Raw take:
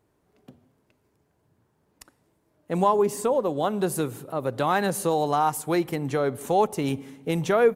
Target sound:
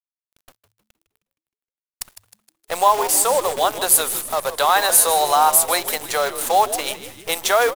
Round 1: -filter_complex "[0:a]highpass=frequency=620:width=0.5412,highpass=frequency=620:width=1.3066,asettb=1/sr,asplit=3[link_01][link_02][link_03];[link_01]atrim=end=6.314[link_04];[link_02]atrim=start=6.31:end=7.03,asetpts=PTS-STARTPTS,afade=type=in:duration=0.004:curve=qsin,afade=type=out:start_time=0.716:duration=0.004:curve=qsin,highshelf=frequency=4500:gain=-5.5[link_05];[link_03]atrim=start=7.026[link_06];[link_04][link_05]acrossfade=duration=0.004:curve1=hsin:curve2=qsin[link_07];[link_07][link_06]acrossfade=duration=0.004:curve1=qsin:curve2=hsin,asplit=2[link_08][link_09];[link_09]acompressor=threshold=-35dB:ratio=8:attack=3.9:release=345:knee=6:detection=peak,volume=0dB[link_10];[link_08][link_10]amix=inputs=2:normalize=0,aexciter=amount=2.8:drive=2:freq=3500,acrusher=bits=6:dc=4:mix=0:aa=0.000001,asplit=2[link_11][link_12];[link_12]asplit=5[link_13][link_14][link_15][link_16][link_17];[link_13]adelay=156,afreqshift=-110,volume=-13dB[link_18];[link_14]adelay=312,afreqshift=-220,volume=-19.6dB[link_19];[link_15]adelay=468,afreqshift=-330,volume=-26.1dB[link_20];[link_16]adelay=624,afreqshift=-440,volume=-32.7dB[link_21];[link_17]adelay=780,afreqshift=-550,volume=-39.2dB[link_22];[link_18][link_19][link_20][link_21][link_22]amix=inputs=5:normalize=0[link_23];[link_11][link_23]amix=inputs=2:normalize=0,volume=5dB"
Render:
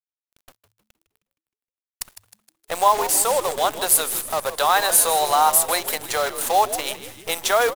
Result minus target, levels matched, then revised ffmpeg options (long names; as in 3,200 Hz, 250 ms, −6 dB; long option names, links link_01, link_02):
downward compressor: peak gain reduction +8.5 dB
-filter_complex "[0:a]highpass=frequency=620:width=0.5412,highpass=frequency=620:width=1.3066,asettb=1/sr,asplit=3[link_01][link_02][link_03];[link_01]atrim=end=6.314[link_04];[link_02]atrim=start=6.31:end=7.03,asetpts=PTS-STARTPTS,afade=type=in:duration=0.004:curve=qsin,afade=type=out:start_time=0.716:duration=0.004:curve=qsin,highshelf=frequency=4500:gain=-5.5[link_05];[link_03]atrim=start=7.026[link_06];[link_04][link_05]acrossfade=duration=0.004:curve1=hsin:curve2=qsin[link_07];[link_07][link_06]acrossfade=duration=0.004:curve1=qsin:curve2=hsin,asplit=2[link_08][link_09];[link_09]acompressor=threshold=-25.5dB:ratio=8:attack=3.9:release=345:knee=6:detection=peak,volume=0dB[link_10];[link_08][link_10]amix=inputs=2:normalize=0,aexciter=amount=2.8:drive=2:freq=3500,acrusher=bits=6:dc=4:mix=0:aa=0.000001,asplit=2[link_11][link_12];[link_12]asplit=5[link_13][link_14][link_15][link_16][link_17];[link_13]adelay=156,afreqshift=-110,volume=-13dB[link_18];[link_14]adelay=312,afreqshift=-220,volume=-19.6dB[link_19];[link_15]adelay=468,afreqshift=-330,volume=-26.1dB[link_20];[link_16]adelay=624,afreqshift=-440,volume=-32.7dB[link_21];[link_17]adelay=780,afreqshift=-550,volume=-39.2dB[link_22];[link_18][link_19][link_20][link_21][link_22]amix=inputs=5:normalize=0[link_23];[link_11][link_23]amix=inputs=2:normalize=0,volume=5dB"